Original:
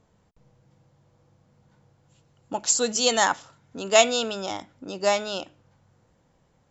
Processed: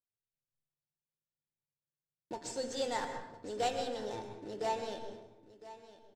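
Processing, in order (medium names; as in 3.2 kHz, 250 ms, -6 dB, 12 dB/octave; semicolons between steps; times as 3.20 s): block-companded coder 3-bit; de-hum 80.12 Hz, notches 39; gate -51 dBFS, range -38 dB; fifteen-band graphic EQ 100 Hz +8 dB, 400 Hz +10 dB, 1 kHz -6 dB, 2.5 kHz -4 dB; in parallel at +2.5 dB: compression, threshold -32 dBFS, peak gain reduction 19.5 dB; on the sum: feedback comb 810 Hz, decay 0.18 s, harmonics all, mix 80%; wide varispeed 1.09×; distance through air 97 m; delay 1006 ms -16 dB; on a send at -6.5 dB: reverberation RT60 0.95 s, pre-delay 104 ms; on the sum: trim -4.5 dB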